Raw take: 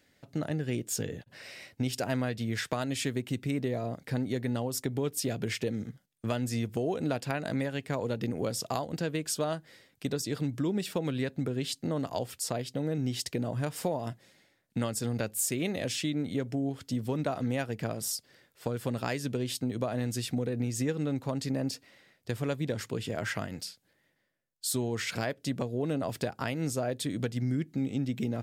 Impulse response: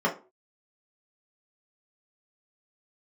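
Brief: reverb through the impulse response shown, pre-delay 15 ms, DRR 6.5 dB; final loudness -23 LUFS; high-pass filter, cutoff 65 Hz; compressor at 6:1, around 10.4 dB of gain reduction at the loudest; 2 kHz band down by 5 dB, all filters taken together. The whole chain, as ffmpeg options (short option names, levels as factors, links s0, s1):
-filter_complex "[0:a]highpass=65,equalizer=f=2000:t=o:g=-6.5,acompressor=threshold=0.0126:ratio=6,asplit=2[s0][s1];[1:a]atrim=start_sample=2205,adelay=15[s2];[s1][s2]afir=irnorm=-1:irlink=0,volume=0.1[s3];[s0][s3]amix=inputs=2:normalize=0,volume=8.41"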